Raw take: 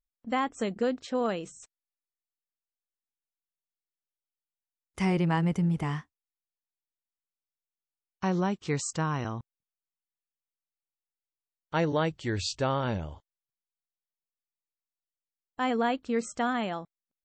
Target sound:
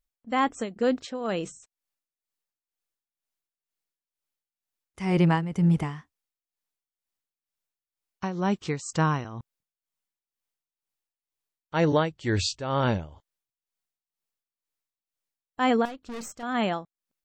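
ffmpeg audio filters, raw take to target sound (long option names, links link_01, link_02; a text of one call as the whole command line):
ffmpeg -i in.wav -filter_complex "[0:a]tremolo=f=2.1:d=0.77,asettb=1/sr,asplit=3[link_01][link_02][link_03];[link_01]atrim=end=15.854[link_04];[link_02]atrim=start=15.85:end=16.43,asetpts=PTS-STARTPTS,afade=type=in:duration=0.004:curve=qsin,afade=type=out:start_time=0.576:duration=0.004:curve=qsin,aeval=exprs='(tanh(112*val(0)+0.5)-tanh(0.5))/112':channel_layout=same[link_05];[link_03]atrim=start=16.426[link_06];[link_04][link_05]acrossfade=duration=0.004:curve1=hsin:curve2=qsin[link_07];[link_07][link_06]acrossfade=duration=0.004:curve1=qsin:curve2=hsin,volume=6.5dB" out.wav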